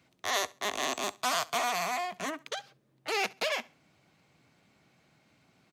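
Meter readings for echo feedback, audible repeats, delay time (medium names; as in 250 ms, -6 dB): 27%, 2, 68 ms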